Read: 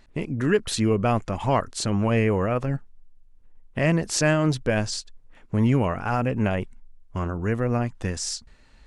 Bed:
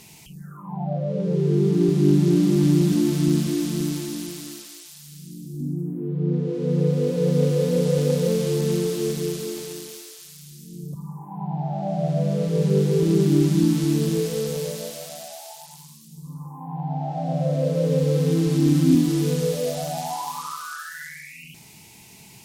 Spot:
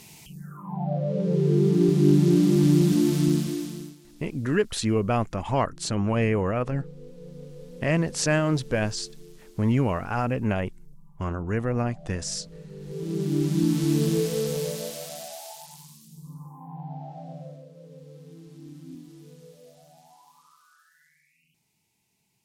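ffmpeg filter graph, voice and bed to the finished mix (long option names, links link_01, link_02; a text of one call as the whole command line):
ffmpeg -i stem1.wav -i stem2.wav -filter_complex "[0:a]adelay=4050,volume=-2dB[link_01];[1:a]volume=21dB,afade=type=out:start_time=3.19:duration=0.77:silence=0.0794328,afade=type=in:start_time=12.79:duration=1.23:silence=0.0794328,afade=type=out:start_time=15.45:duration=2.21:silence=0.0562341[link_02];[link_01][link_02]amix=inputs=2:normalize=0" out.wav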